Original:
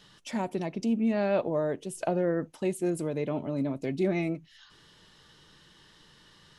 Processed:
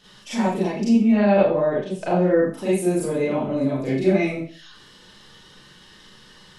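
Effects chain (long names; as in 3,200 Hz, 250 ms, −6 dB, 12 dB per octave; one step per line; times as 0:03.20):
0:01.07–0:02.14: low-pass filter 4,100 Hz 12 dB per octave
four-comb reverb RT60 0.42 s, combs from 30 ms, DRR −8.5 dB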